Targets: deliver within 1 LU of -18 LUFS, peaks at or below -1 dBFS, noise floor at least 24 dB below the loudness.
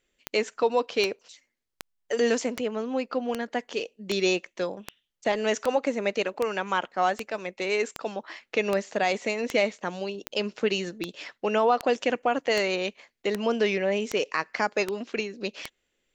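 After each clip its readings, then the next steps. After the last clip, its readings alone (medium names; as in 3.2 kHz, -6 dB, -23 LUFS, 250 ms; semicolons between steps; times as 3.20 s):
clicks found 21; loudness -28.0 LUFS; peak level -9.0 dBFS; loudness target -18.0 LUFS
-> de-click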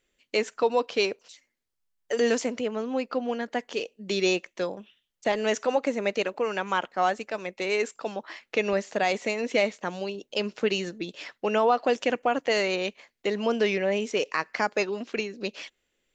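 clicks found 0; loudness -28.0 LUFS; peak level -10.0 dBFS; loudness target -18.0 LUFS
-> trim +10 dB; peak limiter -1 dBFS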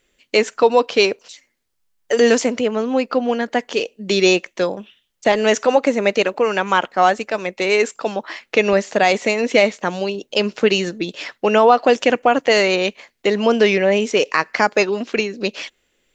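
loudness -18.0 LUFS; peak level -1.0 dBFS; noise floor -69 dBFS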